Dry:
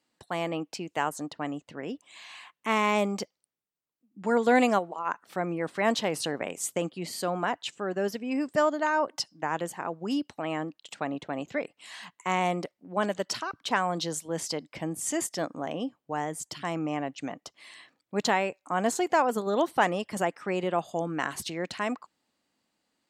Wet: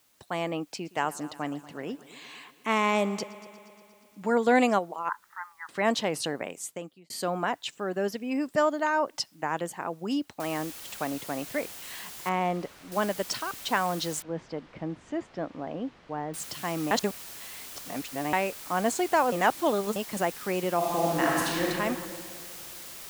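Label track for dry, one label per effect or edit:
0.670000	4.310000	multi-head delay 118 ms, heads first and second, feedback 62%, level -21.5 dB
5.090000	5.690000	Chebyshev band-pass 860–2000 Hz, order 5
6.280000	7.100000	fade out linear
10.400000	10.400000	noise floor step -66 dB -43 dB
12.290000	12.920000	low-pass 1.8 kHz 6 dB/octave
14.220000	16.340000	tape spacing loss at 10 kHz 40 dB
16.910000	18.330000	reverse
19.320000	19.960000	reverse
20.760000	21.660000	reverb throw, RT60 2.2 s, DRR -4 dB

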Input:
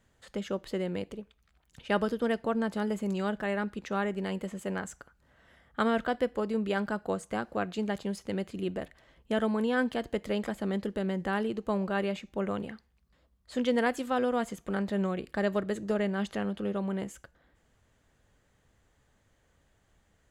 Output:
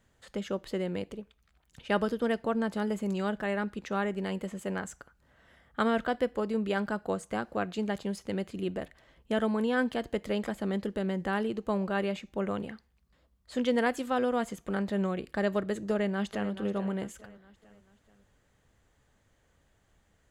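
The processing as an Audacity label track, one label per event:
15.900000	16.510000	echo throw 430 ms, feedback 45%, level -13 dB

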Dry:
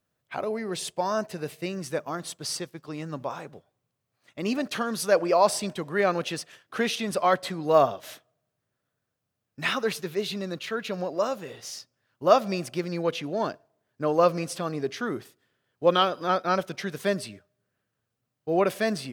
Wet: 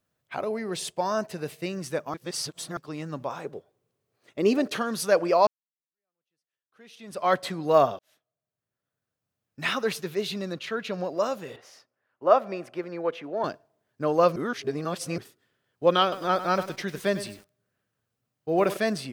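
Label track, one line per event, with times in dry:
2.140000	2.770000	reverse
3.440000	4.770000	peaking EQ 410 Hz +11.5 dB
5.470000	7.310000	fade in exponential
7.990000	9.820000	fade in
10.530000	11.040000	treble shelf 9.5 kHz -9.5 dB
11.560000	13.440000	three-band isolator lows -14 dB, under 300 Hz, highs -16 dB, over 2.3 kHz
14.360000	15.180000	reverse
16.020000	18.770000	bit-crushed delay 100 ms, feedback 35%, word length 7-bit, level -12 dB

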